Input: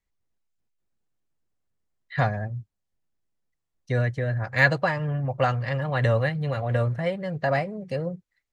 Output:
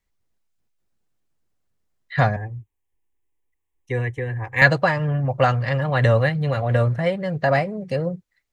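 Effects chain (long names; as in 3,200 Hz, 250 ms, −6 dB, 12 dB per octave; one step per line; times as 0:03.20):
0:02.36–0:04.62: phaser with its sweep stopped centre 930 Hz, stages 8
level +5 dB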